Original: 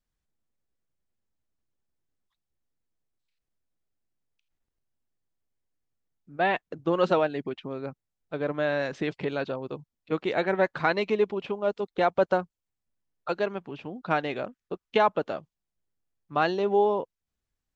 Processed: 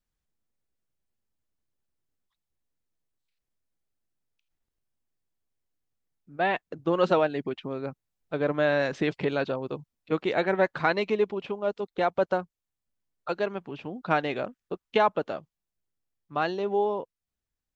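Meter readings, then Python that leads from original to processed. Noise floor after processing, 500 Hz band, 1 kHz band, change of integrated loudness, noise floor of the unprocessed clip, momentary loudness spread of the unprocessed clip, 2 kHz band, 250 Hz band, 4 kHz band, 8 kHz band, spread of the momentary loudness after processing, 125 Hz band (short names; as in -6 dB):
under -85 dBFS, 0.0 dB, -0.5 dB, 0.0 dB, under -85 dBFS, 15 LU, +0.5 dB, +0.5 dB, 0.0 dB, n/a, 13 LU, +1.0 dB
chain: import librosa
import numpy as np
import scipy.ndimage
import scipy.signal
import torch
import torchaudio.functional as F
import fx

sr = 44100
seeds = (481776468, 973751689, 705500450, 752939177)

y = fx.rider(x, sr, range_db=4, speed_s=2.0)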